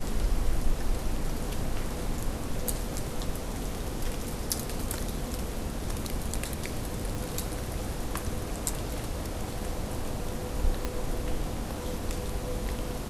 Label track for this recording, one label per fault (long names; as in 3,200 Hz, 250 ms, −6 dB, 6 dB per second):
7.150000	7.150000	click
10.850000	10.850000	click −15 dBFS